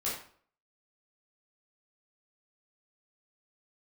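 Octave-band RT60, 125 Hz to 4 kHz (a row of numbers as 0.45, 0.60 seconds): 0.50, 0.50, 0.55, 0.50, 0.45, 0.40 seconds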